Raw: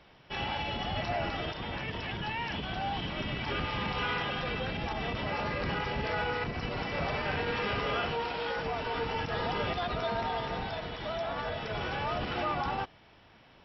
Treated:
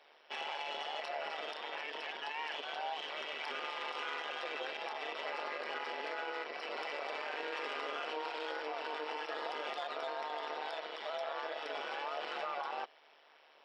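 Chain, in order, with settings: tracing distortion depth 0.02 ms; steep high-pass 410 Hz 48 dB/oct; limiter -28 dBFS, peak gain reduction 7 dB; AM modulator 150 Hz, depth 60%

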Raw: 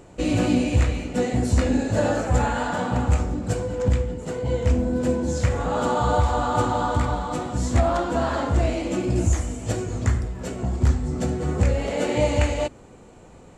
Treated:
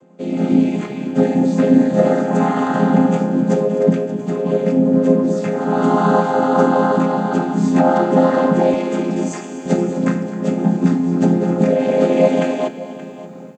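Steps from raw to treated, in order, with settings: chord vocoder minor triad, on F3; 8.74–9.66 HPF 650 Hz 6 dB/oct; AGC gain up to 15.5 dB; on a send: echo 0.576 s -16 dB; on the sum: lo-fi delay 0.254 s, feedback 35%, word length 9-bit, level -15 dB

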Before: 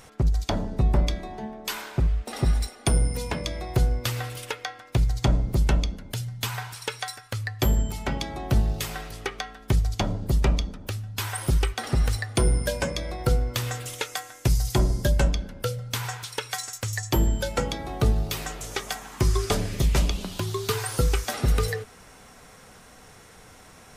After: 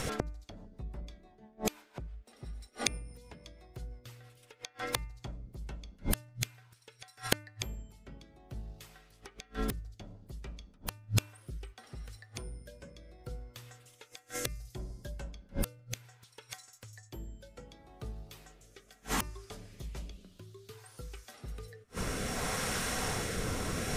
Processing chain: flipped gate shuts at -29 dBFS, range -38 dB; rotary speaker horn 6 Hz, later 0.65 Hz, at 4.72; de-hum 299.4 Hz, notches 9; gain +17.5 dB

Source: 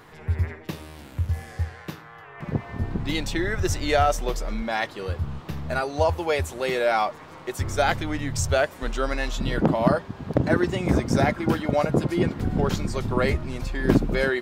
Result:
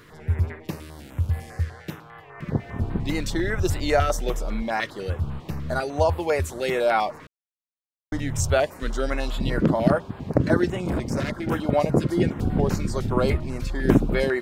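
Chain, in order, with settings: 7.27–8.12 mute; 10.68–11.52 tube stage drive 22 dB, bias 0.45; stepped notch 10 Hz 800–6000 Hz; gain +1.5 dB

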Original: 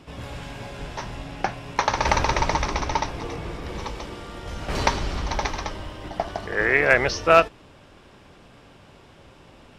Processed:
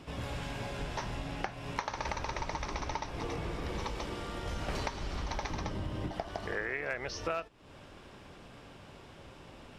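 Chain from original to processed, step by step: 5.5–6.11 bell 150 Hz +12 dB 2.6 oct; compressor 12:1, threshold -30 dBFS, peak gain reduction 20.5 dB; gain -2 dB

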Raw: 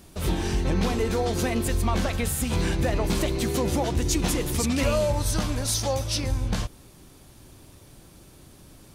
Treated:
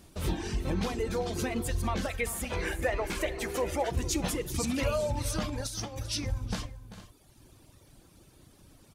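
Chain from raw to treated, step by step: high shelf 12000 Hz -3.5 dB; reverb removal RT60 1.3 s; 2.11–3.9 graphic EQ 125/250/500/2000/4000 Hz -10/-6/+5/+8/-5 dB; 5.41–6.07 negative-ratio compressor -31 dBFS, ratio -0.5; tapped delay 0.39/0.452 s -14.5/-17 dB; on a send at -15 dB: reverb, pre-delay 3 ms; on the sum: gain -4.5 dB

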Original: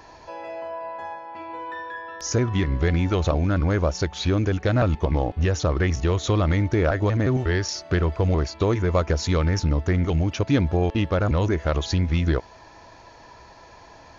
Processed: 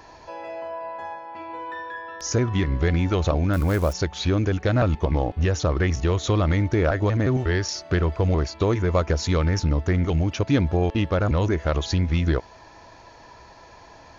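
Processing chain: 3.53–3.93 switching spikes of -27.5 dBFS

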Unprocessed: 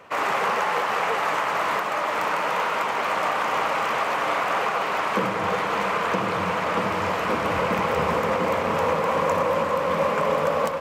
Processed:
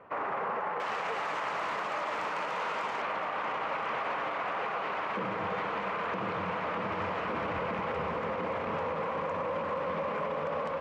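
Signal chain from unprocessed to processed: LPF 1500 Hz 12 dB/oct, from 0.8 s 6300 Hz, from 3.02 s 3200 Hz; limiter -20.5 dBFS, peak gain reduction 9 dB; gain -4.5 dB

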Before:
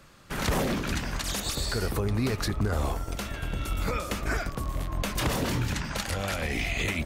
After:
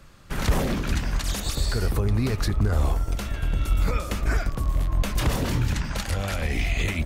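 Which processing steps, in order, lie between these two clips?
low shelf 99 Hz +11 dB

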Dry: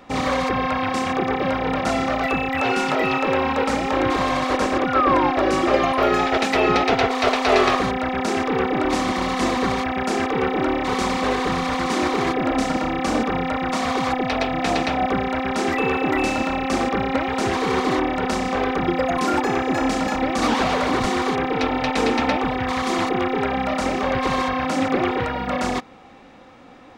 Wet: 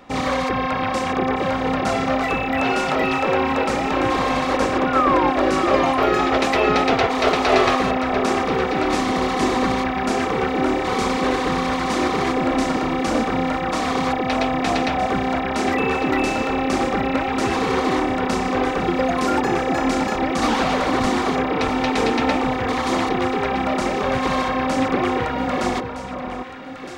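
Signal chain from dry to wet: echo with dull and thin repeats by turns 0.632 s, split 1300 Hz, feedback 59%, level -6 dB

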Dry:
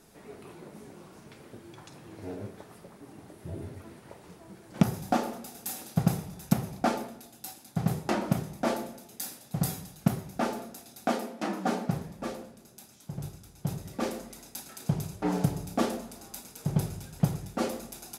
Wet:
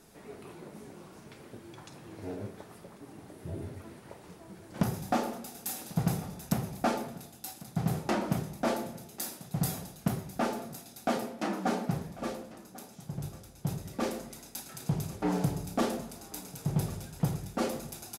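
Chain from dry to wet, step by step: soft clip -18.5 dBFS, distortion -12 dB; on a send: echo 1.094 s -19 dB

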